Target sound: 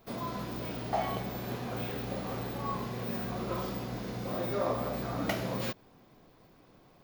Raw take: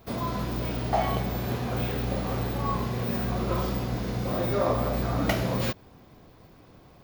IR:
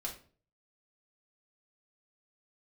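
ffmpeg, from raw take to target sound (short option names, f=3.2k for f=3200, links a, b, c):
-af "equalizer=f=69:t=o:w=1:g=-13,volume=-5.5dB"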